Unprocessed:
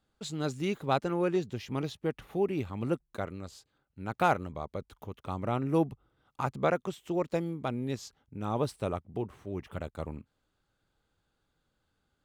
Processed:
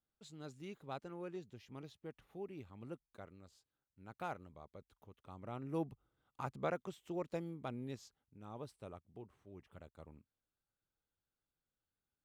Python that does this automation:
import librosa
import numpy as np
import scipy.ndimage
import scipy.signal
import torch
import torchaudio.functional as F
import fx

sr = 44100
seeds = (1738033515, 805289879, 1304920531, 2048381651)

y = fx.gain(x, sr, db=fx.line((5.31, -17.5), (5.91, -10.5), (7.84, -10.5), (8.37, -18.0)))